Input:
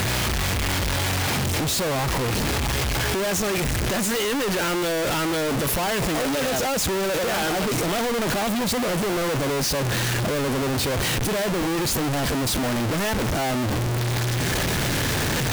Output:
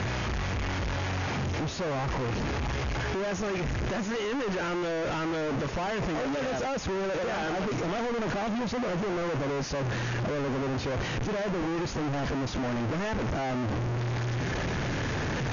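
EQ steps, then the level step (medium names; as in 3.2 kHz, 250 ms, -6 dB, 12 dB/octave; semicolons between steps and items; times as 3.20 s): brick-wall FIR low-pass 6.9 kHz; distance through air 73 m; peaking EQ 4 kHz -6.5 dB 1.1 oct; -5.5 dB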